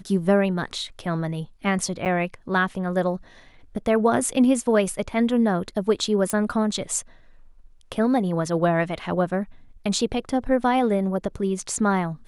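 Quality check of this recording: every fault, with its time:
2.05–2.06 gap 8.5 ms
6.3 pop -11 dBFS

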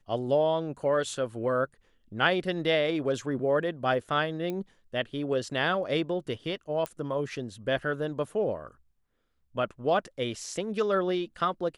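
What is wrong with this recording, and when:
4.5 pop -21 dBFS
6.86 pop -18 dBFS

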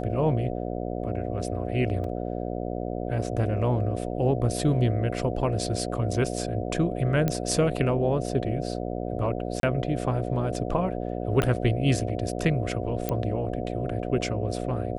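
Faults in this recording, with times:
buzz 60 Hz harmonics 12 -31 dBFS
2.04 gap 3.1 ms
7.28 pop -12 dBFS
9.6–9.63 gap 32 ms
11.42 pop -12 dBFS
13.09 pop -13 dBFS

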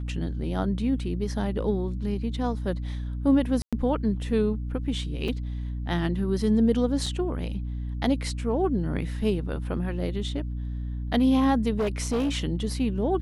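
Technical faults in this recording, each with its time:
hum 60 Hz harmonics 5 -31 dBFS
3.62–3.73 gap 0.106 s
5.28 gap 4 ms
7.06 gap 4 ms
11.78–12.35 clipped -21.5 dBFS

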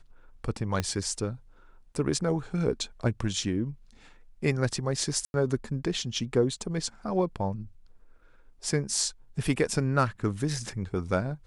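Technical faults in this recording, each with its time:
0.8 pop -13 dBFS
5.25–5.34 gap 91 ms

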